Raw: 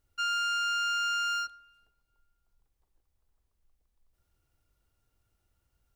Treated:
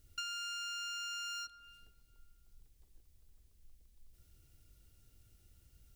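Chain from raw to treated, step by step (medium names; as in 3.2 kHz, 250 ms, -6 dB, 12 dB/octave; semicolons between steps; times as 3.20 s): peaking EQ 950 Hz -14.5 dB 1.9 oct; compression 8:1, threshold -52 dBFS, peak gain reduction 16.5 dB; trim +11.5 dB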